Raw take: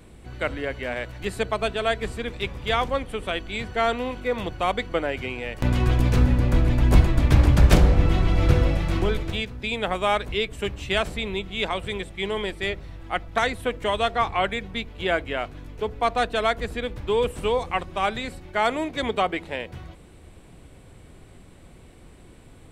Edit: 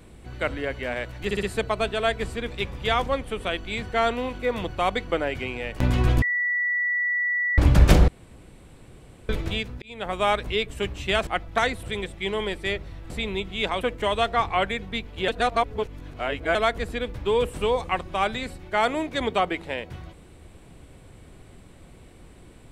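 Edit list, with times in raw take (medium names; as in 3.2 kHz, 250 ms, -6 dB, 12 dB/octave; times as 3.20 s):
1.25 s: stutter 0.06 s, 4 plays
6.04–7.40 s: bleep 1.95 kHz -21.5 dBFS
7.90–9.11 s: room tone
9.64–10.05 s: fade in
11.09–11.80 s: swap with 13.07–13.63 s
15.10–16.37 s: reverse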